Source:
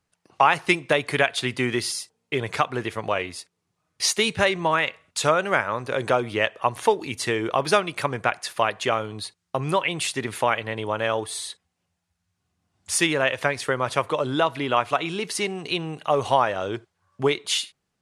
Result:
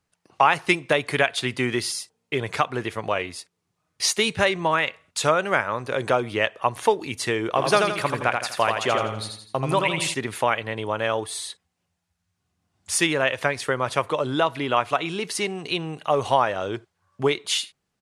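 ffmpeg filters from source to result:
-filter_complex "[0:a]asplit=3[s0][s1][s2];[s0]afade=t=out:st=7.55:d=0.02[s3];[s1]aecho=1:1:83|166|249|332|415:0.596|0.256|0.11|0.0474|0.0204,afade=t=in:st=7.55:d=0.02,afade=t=out:st=10.13:d=0.02[s4];[s2]afade=t=in:st=10.13:d=0.02[s5];[s3][s4][s5]amix=inputs=3:normalize=0"

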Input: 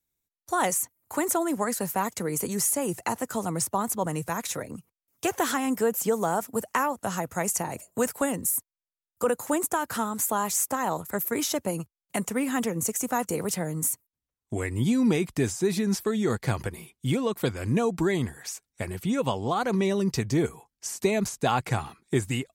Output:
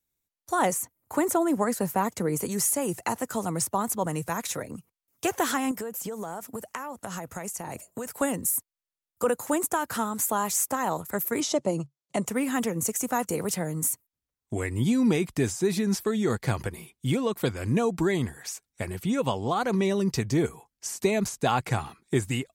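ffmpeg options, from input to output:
-filter_complex "[0:a]asettb=1/sr,asplit=3[s0][s1][s2];[s0]atrim=end=0.594[s3];[s1]atrim=start=0.59:end=2.42,asetpts=PTS-STARTPTS,afade=t=in:d=0.004:c=qsin,afade=t=out:st=1.826:d=0.004:c=qsin,tiltshelf=f=1300:g=3.5[s4];[s2]atrim=start=2.416[s5];[s3][s4]acrossfade=d=0.004:c1=hsin:c2=qsin[s6];[s6][s5]acrossfade=d=0.004:c1=qsin:c2=hsin,asettb=1/sr,asplit=3[s7][s8][s9];[s7]atrim=end=5.714[s10];[s8]atrim=start=5.71:end=8.15,asetpts=PTS-STARTPTS,afade=t=in:d=0.004:c=qsin,afade=t=out:st=2.436:d=0.004:c=qsin,acompressor=threshold=0.0316:ratio=12:attack=3.2:release=140:knee=1:detection=peak[s11];[s9]atrim=start=8.146[s12];[s10][s11]acrossfade=d=0.004:c1=hsin:c2=qsin[s13];[s13][s12]acrossfade=d=0.004:c1=qsin:c2=hsin,asettb=1/sr,asplit=3[s14][s15][s16];[s14]atrim=end=11.404[s17];[s15]atrim=start=11.4:end=12.26,asetpts=PTS-STARTPTS,afade=t=in:d=0.004:c=qsin,afade=t=out:st=0.856:d=0.004:c=qsin,highpass=140,equalizer=f=140:t=q:w=4:g=10,equalizer=f=350:t=q:w=4:g=4,equalizer=f=600:t=q:w=4:g=5,equalizer=f=1600:t=q:w=4:g=-9,equalizer=f=2500:t=q:w=4:g=-4,lowpass=f=8100:w=0.5412,lowpass=f=8100:w=1.3066[s18];[s16]atrim=start=12.256[s19];[s17][s18]acrossfade=d=0.004:c1=hsin:c2=qsin[s20];[s20][s19]acrossfade=d=0.004:c1=qsin:c2=hsin"

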